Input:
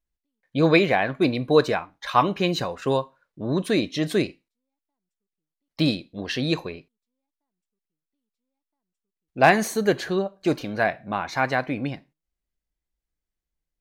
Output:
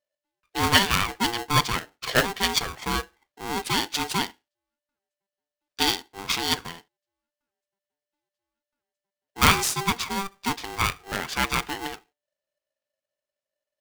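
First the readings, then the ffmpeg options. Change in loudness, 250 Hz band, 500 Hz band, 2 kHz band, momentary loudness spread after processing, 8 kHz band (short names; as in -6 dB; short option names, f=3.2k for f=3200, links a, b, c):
-1.0 dB, -7.5 dB, -11.0 dB, +0.5 dB, 13 LU, +10.5 dB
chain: -af "crystalizer=i=7.5:c=0,adynamicsmooth=sensitivity=1:basefreq=3.4k,aeval=exprs='val(0)*sgn(sin(2*PI*590*n/s))':c=same,volume=-6dB"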